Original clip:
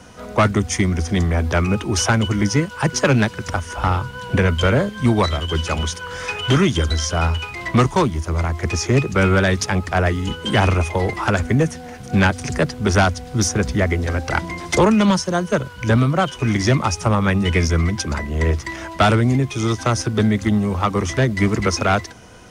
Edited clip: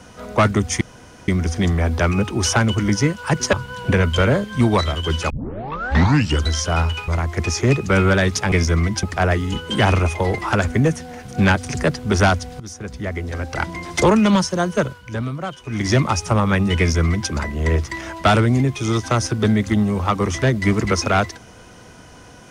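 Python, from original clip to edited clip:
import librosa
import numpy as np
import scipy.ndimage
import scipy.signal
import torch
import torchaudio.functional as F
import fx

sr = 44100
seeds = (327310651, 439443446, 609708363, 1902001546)

y = fx.edit(x, sr, fx.insert_room_tone(at_s=0.81, length_s=0.47),
    fx.cut(start_s=3.06, length_s=0.92),
    fx.tape_start(start_s=5.75, length_s=1.13),
    fx.cut(start_s=7.53, length_s=0.81),
    fx.fade_in_from(start_s=13.35, length_s=1.45, floor_db=-19.5),
    fx.fade_down_up(start_s=15.6, length_s=1.04, db=-9.5, fade_s=0.19),
    fx.duplicate(start_s=17.54, length_s=0.51, to_s=9.78), tone=tone)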